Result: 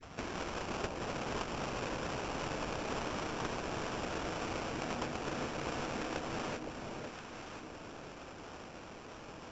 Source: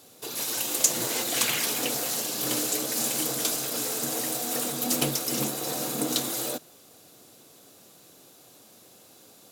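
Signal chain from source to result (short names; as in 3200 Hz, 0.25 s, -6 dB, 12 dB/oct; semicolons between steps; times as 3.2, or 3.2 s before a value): tape start at the beginning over 0.35 s; sample-rate reducer 2000 Hz, jitter 20%; compressor 6:1, threshold -41 dBFS, peak gain reduction 22.5 dB; rippled Chebyshev low-pass 7500 Hz, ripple 6 dB; echo with dull and thin repeats by turns 0.514 s, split 840 Hz, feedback 55%, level -3 dB; gain +8 dB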